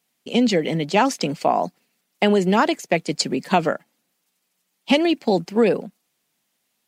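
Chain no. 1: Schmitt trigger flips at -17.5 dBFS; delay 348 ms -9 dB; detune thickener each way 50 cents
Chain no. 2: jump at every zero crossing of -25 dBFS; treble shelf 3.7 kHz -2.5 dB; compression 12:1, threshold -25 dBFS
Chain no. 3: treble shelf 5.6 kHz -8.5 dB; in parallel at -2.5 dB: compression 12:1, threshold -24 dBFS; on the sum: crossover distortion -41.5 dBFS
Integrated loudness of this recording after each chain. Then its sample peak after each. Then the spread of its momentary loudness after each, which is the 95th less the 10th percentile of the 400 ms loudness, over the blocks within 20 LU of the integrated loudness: -31.0 LUFS, -29.5 LUFS, -19.5 LUFS; -14.5 dBFS, -10.0 dBFS, -1.5 dBFS; 11 LU, 3 LU, 6 LU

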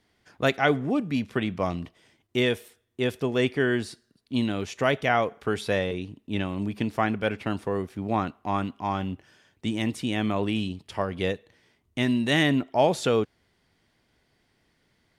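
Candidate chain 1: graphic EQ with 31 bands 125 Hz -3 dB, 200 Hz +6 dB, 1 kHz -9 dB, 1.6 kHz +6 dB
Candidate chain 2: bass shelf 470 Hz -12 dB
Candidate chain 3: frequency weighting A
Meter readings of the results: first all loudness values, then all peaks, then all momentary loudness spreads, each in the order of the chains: -26.0 LUFS, -31.5 LUFS, -29.5 LUFS; -7.0 dBFS, -8.5 dBFS, -7.0 dBFS; 9 LU, 12 LU, 12 LU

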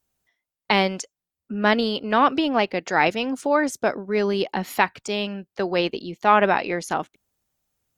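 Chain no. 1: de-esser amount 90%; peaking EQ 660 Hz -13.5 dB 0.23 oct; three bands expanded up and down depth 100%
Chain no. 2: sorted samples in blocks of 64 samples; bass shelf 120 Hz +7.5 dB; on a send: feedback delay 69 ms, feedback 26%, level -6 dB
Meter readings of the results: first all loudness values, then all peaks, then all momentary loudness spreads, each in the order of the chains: -25.0 LUFS, -21.0 LUFS; -3.5 dBFS, -3.5 dBFS; 14 LU, 9 LU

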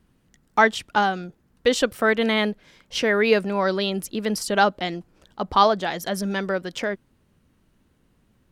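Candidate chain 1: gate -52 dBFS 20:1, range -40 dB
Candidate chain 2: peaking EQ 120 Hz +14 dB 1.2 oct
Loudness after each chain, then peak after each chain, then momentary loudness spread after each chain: -22.5 LUFS, -21.0 LUFS; -3.0 dBFS, -3.0 dBFS; 11 LU, 12 LU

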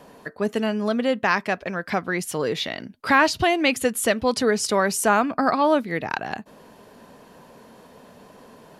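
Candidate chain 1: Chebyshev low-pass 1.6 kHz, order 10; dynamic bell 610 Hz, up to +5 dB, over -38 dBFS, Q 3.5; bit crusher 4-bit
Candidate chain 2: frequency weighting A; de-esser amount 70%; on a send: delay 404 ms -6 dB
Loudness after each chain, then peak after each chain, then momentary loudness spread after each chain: -21.5 LUFS, -24.5 LUFS; -7.5 dBFS, -7.0 dBFS; 10 LU, 11 LU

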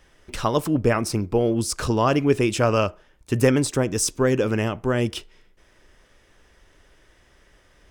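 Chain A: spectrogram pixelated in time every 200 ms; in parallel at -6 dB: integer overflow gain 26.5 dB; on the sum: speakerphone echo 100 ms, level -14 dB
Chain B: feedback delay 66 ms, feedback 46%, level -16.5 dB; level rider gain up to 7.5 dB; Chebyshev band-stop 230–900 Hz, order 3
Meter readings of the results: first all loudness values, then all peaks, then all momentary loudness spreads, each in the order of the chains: -25.0 LUFS, -21.5 LUFS; -9.5 dBFS, -3.5 dBFS; 7 LU, 6 LU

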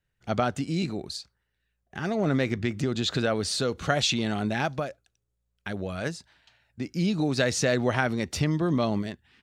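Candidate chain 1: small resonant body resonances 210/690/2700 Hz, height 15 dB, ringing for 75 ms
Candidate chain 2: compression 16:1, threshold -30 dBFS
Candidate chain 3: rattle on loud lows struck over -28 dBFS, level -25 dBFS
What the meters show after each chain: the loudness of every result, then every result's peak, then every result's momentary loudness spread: -21.0 LUFS, -35.5 LUFS, -27.5 LUFS; -6.0 dBFS, -18.0 dBFS, -9.0 dBFS; 13 LU, 7 LU, 12 LU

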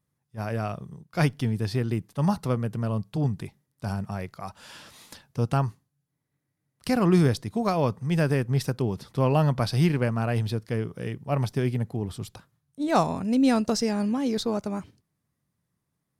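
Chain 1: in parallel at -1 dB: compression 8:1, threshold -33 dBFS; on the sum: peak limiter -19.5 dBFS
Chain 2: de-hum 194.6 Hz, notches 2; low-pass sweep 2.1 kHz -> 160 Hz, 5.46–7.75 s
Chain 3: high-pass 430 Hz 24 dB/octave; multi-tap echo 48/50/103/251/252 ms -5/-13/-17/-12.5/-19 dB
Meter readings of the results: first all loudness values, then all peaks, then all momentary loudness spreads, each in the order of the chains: -29.5 LUFS, -24.0 LUFS, -31.0 LUFS; -19.5 dBFS, -6.0 dBFS, -8.5 dBFS; 11 LU, 17 LU, 17 LU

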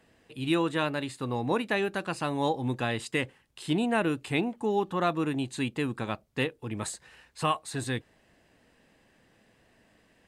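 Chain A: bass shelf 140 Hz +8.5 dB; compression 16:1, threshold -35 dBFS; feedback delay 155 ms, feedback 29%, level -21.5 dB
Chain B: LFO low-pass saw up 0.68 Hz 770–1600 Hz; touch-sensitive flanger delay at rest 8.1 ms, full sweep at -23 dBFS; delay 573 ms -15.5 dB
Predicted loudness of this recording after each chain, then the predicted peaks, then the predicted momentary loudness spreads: -40.5 LUFS, -31.0 LUFS; -26.0 dBFS, -13.0 dBFS; 4 LU, 12 LU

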